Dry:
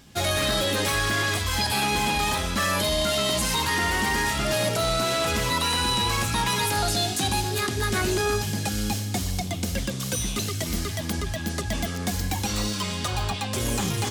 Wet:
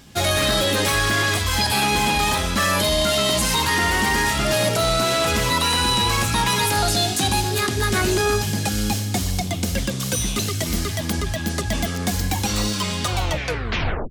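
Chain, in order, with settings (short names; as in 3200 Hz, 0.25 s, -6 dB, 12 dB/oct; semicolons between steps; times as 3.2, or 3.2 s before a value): tape stop at the end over 1.00 s; gain +4.5 dB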